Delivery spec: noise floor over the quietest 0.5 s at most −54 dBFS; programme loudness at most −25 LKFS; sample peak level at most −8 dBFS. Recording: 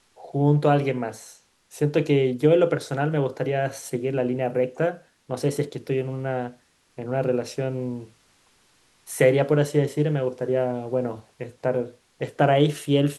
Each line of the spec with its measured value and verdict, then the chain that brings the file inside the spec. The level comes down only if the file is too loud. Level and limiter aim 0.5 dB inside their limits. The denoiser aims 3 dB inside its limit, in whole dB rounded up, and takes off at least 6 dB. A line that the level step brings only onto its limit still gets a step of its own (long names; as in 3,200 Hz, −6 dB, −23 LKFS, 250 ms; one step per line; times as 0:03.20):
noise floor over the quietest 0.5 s −61 dBFS: in spec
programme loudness −24.0 LKFS: out of spec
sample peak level −6.0 dBFS: out of spec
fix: level −1.5 dB
brickwall limiter −8.5 dBFS